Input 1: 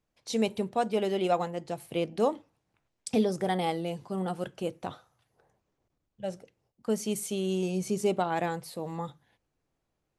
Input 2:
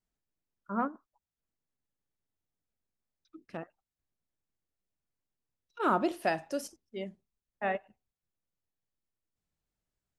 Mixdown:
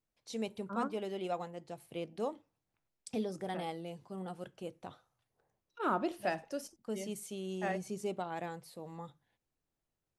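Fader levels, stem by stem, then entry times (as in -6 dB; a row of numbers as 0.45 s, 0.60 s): -10.5 dB, -5.0 dB; 0.00 s, 0.00 s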